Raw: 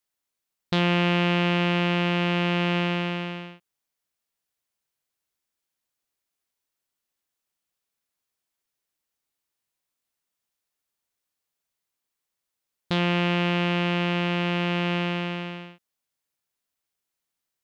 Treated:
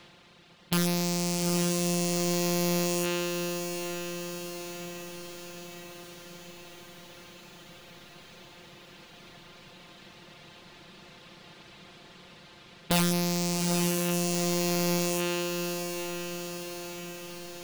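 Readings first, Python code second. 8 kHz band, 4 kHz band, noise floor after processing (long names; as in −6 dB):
can't be measured, −3.0 dB, −53 dBFS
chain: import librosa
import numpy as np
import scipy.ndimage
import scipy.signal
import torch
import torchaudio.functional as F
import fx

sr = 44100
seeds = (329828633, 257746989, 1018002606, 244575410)

y = fx.bin_compress(x, sr, power=0.4)
y = fx.rider(y, sr, range_db=3, speed_s=2.0)
y = fx.dereverb_blind(y, sr, rt60_s=1.4)
y = (np.mod(10.0 ** (18.5 / 20.0) * y + 1.0, 2.0) - 1.0) / 10.0 ** (18.5 / 20.0)
y = fx.echo_diffused(y, sr, ms=825, feedback_pct=61, wet_db=-6.0)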